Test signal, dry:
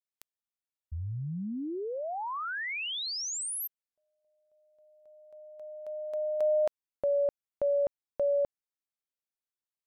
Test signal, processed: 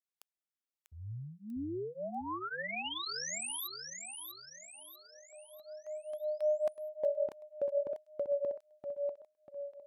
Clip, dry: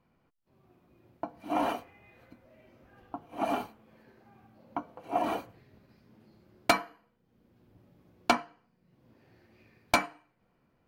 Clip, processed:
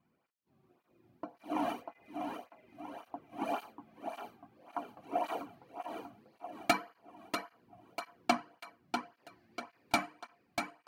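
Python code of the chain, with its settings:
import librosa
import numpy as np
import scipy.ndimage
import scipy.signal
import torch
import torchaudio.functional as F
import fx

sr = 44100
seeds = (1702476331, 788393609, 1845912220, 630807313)

y = fx.echo_feedback(x, sr, ms=643, feedback_pct=45, wet_db=-6.0)
y = fx.flanger_cancel(y, sr, hz=1.8, depth_ms=2.3)
y = y * librosa.db_to_amplitude(-2.5)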